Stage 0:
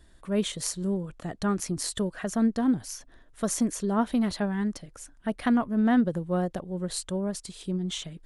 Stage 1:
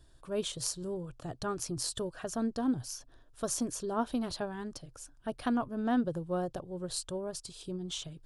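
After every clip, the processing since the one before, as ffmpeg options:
-af "equalizer=f=125:t=o:w=0.33:g=10,equalizer=f=200:t=o:w=0.33:g=-12,equalizer=f=2000:t=o:w=0.33:g=-12,equalizer=f=5000:t=o:w=0.33:g=4,volume=0.631"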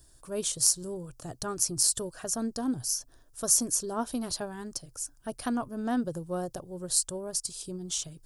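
-af "aexciter=amount=3.6:drive=6.6:freq=4900"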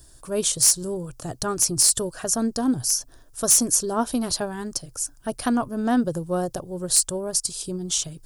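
-af "asoftclip=type=hard:threshold=0.119,volume=2.51"

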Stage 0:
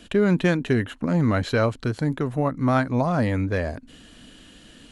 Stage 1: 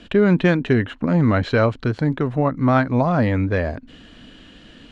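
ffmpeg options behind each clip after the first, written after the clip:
-af "lowpass=3900,volume=1.58"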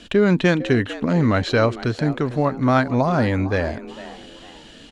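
-filter_complex "[0:a]bass=f=250:g=-2,treble=f=4000:g=11,asplit=4[s0][s1][s2][s3];[s1]adelay=454,afreqshift=120,volume=0.158[s4];[s2]adelay=908,afreqshift=240,volume=0.0537[s5];[s3]adelay=1362,afreqshift=360,volume=0.0184[s6];[s0][s4][s5][s6]amix=inputs=4:normalize=0"

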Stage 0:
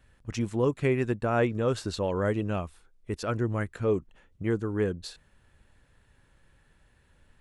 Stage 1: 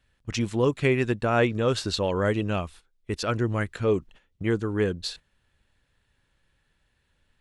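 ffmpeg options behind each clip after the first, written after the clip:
-af "agate=range=0.282:threshold=0.00355:ratio=16:detection=peak,equalizer=f=3700:t=o:w=1.7:g=7.5,volume=1.33"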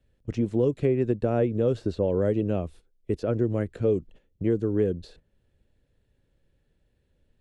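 -filter_complex "[0:a]lowshelf=f=730:t=q:w=1.5:g=11,acrossover=split=210|2100[s0][s1][s2];[s0]acompressor=threshold=0.1:ratio=4[s3];[s1]acompressor=threshold=0.224:ratio=4[s4];[s2]acompressor=threshold=0.00562:ratio=4[s5];[s3][s4][s5]amix=inputs=3:normalize=0,volume=0.376"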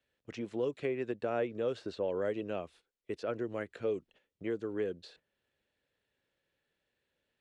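-af "bandpass=f=2300:t=q:w=0.53:csg=0"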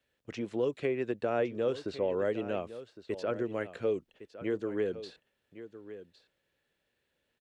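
-af "aecho=1:1:1110:0.2,volume=1.41"

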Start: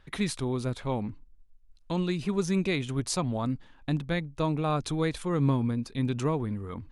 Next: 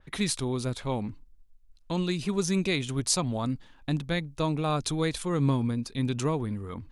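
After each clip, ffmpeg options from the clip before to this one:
-af "adynamicequalizer=threshold=0.00398:dfrequency=3100:dqfactor=0.7:tfrequency=3100:tqfactor=0.7:attack=5:release=100:ratio=0.375:range=3.5:mode=boostabove:tftype=highshelf"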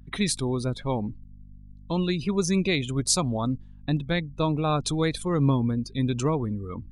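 -af "afftdn=nr=19:nf=-41,aeval=exprs='val(0)+0.00355*(sin(2*PI*50*n/s)+sin(2*PI*2*50*n/s)/2+sin(2*PI*3*50*n/s)/3+sin(2*PI*4*50*n/s)/4+sin(2*PI*5*50*n/s)/5)':c=same,volume=1.41"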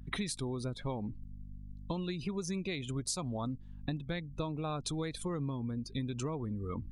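-af "acompressor=threshold=0.0224:ratio=12"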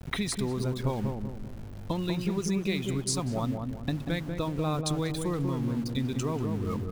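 -filter_complex "[0:a]aeval=exprs='val(0)*gte(abs(val(0)),0.00447)':c=same,asplit=2[s0][s1];[s1]adelay=191,lowpass=f=830:p=1,volume=0.668,asplit=2[s2][s3];[s3]adelay=191,lowpass=f=830:p=1,volume=0.46,asplit=2[s4][s5];[s5]adelay=191,lowpass=f=830:p=1,volume=0.46,asplit=2[s6][s7];[s7]adelay=191,lowpass=f=830:p=1,volume=0.46,asplit=2[s8][s9];[s9]adelay=191,lowpass=f=830:p=1,volume=0.46,asplit=2[s10][s11];[s11]adelay=191,lowpass=f=830:p=1,volume=0.46[s12];[s0][s2][s4][s6][s8][s10][s12]amix=inputs=7:normalize=0,volume=1.88"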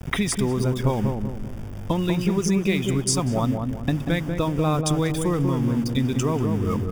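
-af "asuperstop=centerf=4100:order=4:qfactor=5.2,volume=2.37"

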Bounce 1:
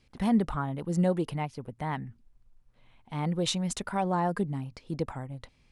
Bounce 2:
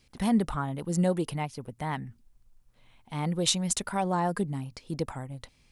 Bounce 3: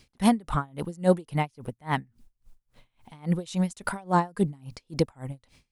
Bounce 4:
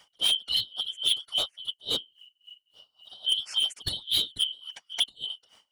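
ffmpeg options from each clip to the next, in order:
-af "highshelf=f=4900:g=11"
-af "aeval=exprs='val(0)*pow(10,-29*(0.5-0.5*cos(2*PI*3.6*n/s))/20)':c=same,volume=2.66"
-af "afftfilt=real='real(if(lt(b,272),68*(eq(floor(b/68),0)*1+eq(floor(b/68),1)*3+eq(floor(b/68),2)*0+eq(floor(b/68),3)*2)+mod(b,68),b),0)':imag='imag(if(lt(b,272),68*(eq(floor(b/68),0)*1+eq(floor(b/68),1)*3+eq(floor(b/68),2)*0+eq(floor(b/68),3)*2)+mod(b,68),b),0)':win_size=2048:overlap=0.75,volume=11.2,asoftclip=hard,volume=0.0891,afftfilt=real='hypot(re,im)*cos(2*PI*random(0))':imag='hypot(re,im)*sin(2*PI*random(1))':win_size=512:overlap=0.75,volume=2"

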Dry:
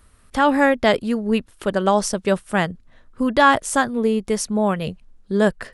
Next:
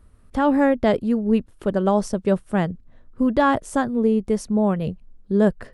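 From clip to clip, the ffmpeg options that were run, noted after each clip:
-af "tiltshelf=f=880:g=7,volume=0.596"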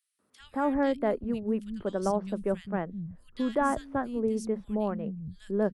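-filter_complex "[0:a]acrossover=split=180|2400[s0][s1][s2];[s1]adelay=190[s3];[s0]adelay=400[s4];[s4][s3][s2]amix=inputs=3:normalize=0,volume=0.398"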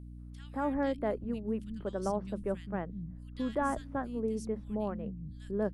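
-af "aeval=exprs='val(0)+0.01*(sin(2*PI*60*n/s)+sin(2*PI*2*60*n/s)/2+sin(2*PI*3*60*n/s)/3+sin(2*PI*4*60*n/s)/4+sin(2*PI*5*60*n/s)/5)':c=same,volume=0.562"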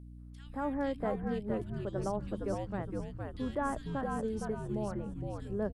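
-filter_complex "[0:a]asplit=6[s0][s1][s2][s3][s4][s5];[s1]adelay=463,afreqshift=-86,volume=0.668[s6];[s2]adelay=926,afreqshift=-172,volume=0.254[s7];[s3]adelay=1389,afreqshift=-258,volume=0.0966[s8];[s4]adelay=1852,afreqshift=-344,volume=0.0367[s9];[s5]adelay=2315,afreqshift=-430,volume=0.014[s10];[s0][s6][s7][s8][s9][s10]amix=inputs=6:normalize=0,volume=0.75"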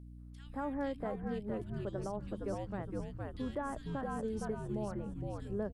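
-af "alimiter=level_in=1.26:limit=0.0631:level=0:latency=1:release=245,volume=0.794,volume=0.841"

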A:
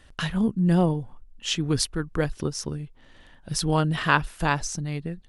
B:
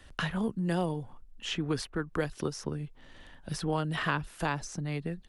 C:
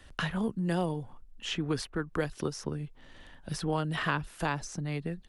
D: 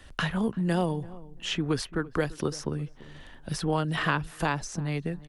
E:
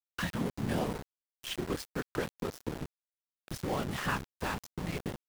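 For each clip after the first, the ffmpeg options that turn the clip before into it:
-filter_complex "[0:a]acrossover=split=130|380|2500[s0][s1][s2][s3];[s0]acompressor=threshold=0.00562:ratio=4[s4];[s1]acompressor=threshold=0.0178:ratio=4[s5];[s2]acompressor=threshold=0.0316:ratio=4[s6];[s3]acompressor=threshold=0.00631:ratio=4[s7];[s4][s5][s6][s7]amix=inputs=4:normalize=0"
-af anull
-filter_complex "[0:a]asplit=2[s0][s1];[s1]adelay=339,lowpass=f=1100:p=1,volume=0.119,asplit=2[s2][s3];[s3]adelay=339,lowpass=f=1100:p=1,volume=0.22[s4];[s0][s2][s4]amix=inputs=3:normalize=0,volume=1.5"
-af "afftfilt=real='hypot(re,im)*cos(2*PI*random(0))':imag='hypot(re,im)*sin(2*PI*random(1))':win_size=512:overlap=0.75,aeval=exprs='val(0)*gte(abs(val(0)),0.0158)':c=same"

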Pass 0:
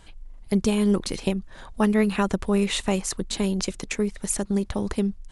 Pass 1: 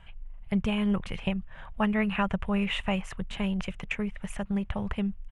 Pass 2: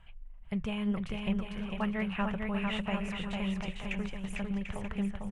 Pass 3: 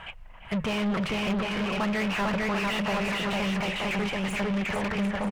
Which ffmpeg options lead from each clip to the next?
-af "firequalizer=gain_entry='entry(160,0);entry(300,-16);entry(620,-3);entry(2900,1);entry(4200,-21)':delay=0.05:min_phase=1"
-filter_complex "[0:a]flanger=delay=0.7:depth=6.1:regen=84:speed=0.75:shape=triangular,asplit=2[s0][s1];[s1]aecho=0:1:450|742.5|932.6|1056|1137:0.631|0.398|0.251|0.158|0.1[s2];[s0][s2]amix=inputs=2:normalize=0,volume=0.794"
-filter_complex "[0:a]asplit=2[s0][s1];[s1]highpass=f=720:p=1,volume=44.7,asoftclip=type=tanh:threshold=0.1[s2];[s0][s2]amix=inputs=2:normalize=0,lowpass=f=2000:p=1,volume=0.501,asplit=2[s3][s4];[s4]adelay=340,highpass=300,lowpass=3400,asoftclip=type=hard:threshold=0.0355,volume=0.224[s5];[s3][s5]amix=inputs=2:normalize=0"

